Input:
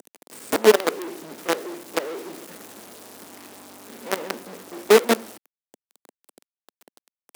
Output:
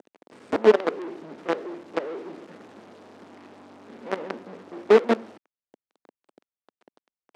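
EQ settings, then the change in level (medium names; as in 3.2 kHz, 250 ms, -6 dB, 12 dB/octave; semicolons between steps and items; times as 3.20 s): tape spacing loss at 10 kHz 29 dB; 0.0 dB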